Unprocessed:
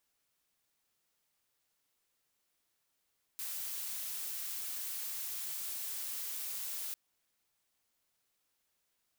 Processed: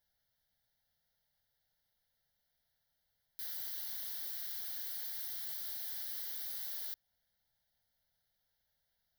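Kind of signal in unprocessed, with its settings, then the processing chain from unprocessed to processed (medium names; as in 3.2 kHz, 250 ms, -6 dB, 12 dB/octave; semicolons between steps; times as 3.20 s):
noise blue, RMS -40 dBFS 3.55 s
bass shelf 200 Hz +10 dB; static phaser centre 1.7 kHz, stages 8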